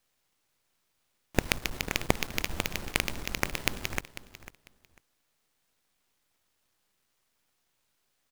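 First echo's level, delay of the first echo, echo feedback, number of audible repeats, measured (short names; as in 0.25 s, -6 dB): -15.0 dB, 0.497 s, 20%, 2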